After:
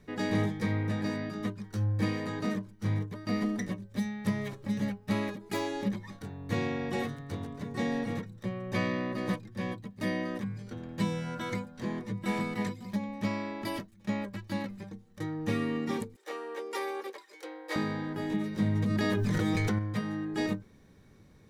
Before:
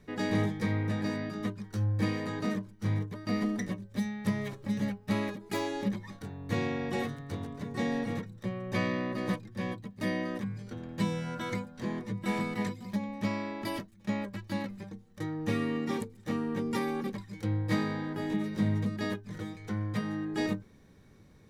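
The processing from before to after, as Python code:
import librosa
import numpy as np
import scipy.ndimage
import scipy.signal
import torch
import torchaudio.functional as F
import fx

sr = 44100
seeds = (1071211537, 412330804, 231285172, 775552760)

y = fx.steep_highpass(x, sr, hz=360.0, slope=48, at=(16.16, 17.76))
y = fx.env_flatten(y, sr, amount_pct=100, at=(18.75, 19.79))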